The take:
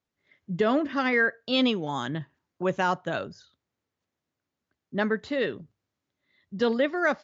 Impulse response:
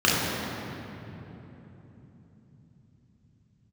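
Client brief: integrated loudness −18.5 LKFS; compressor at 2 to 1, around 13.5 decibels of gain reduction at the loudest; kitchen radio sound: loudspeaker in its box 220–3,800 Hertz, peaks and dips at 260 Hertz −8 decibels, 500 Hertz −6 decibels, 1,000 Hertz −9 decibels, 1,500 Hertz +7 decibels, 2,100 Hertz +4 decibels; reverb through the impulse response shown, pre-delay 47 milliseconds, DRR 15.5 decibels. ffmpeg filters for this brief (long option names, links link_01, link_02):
-filter_complex "[0:a]acompressor=threshold=-45dB:ratio=2,asplit=2[link_01][link_02];[1:a]atrim=start_sample=2205,adelay=47[link_03];[link_02][link_03]afir=irnorm=-1:irlink=0,volume=-35dB[link_04];[link_01][link_04]amix=inputs=2:normalize=0,highpass=220,equalizer=frequency=260:width_type=q:width=4:gain=-8,equalizer=frequency=500:width_type=q:width=4:gain=-6,equalizer=frequency=1000:width_type=q:width=4:gain=-9,equalizer=frequency=1500:width_type=q:width=4:gain=7,equalizer=frequency=2100:width_type=q:width=4:gain=4,lowpass=frequency=3800:width=0.5412,lowpass=frequency=3800:width=1.3066,volume=21dB"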